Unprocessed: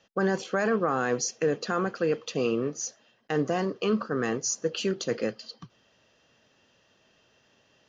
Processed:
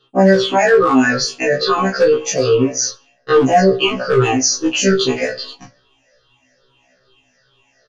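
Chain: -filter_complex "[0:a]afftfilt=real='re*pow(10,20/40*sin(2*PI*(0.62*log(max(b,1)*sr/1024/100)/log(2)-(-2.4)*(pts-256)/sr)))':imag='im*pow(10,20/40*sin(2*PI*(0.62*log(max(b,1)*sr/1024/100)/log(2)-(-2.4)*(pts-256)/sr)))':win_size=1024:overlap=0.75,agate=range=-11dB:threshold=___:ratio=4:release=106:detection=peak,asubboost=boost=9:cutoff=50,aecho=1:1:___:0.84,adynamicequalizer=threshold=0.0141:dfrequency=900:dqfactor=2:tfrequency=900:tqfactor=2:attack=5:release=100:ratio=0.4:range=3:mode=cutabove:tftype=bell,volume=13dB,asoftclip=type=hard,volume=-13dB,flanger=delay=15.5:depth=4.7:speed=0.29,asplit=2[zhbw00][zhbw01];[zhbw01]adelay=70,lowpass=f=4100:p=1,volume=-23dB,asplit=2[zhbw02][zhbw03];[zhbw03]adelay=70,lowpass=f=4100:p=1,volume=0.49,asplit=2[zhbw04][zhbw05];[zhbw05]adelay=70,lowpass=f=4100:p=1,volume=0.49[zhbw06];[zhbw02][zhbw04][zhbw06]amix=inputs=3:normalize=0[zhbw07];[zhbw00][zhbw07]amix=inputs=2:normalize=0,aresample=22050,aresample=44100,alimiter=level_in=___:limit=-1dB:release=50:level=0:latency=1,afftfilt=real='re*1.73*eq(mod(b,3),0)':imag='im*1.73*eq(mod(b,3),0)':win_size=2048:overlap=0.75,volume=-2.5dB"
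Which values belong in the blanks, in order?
-50dB, 7.3, 19dB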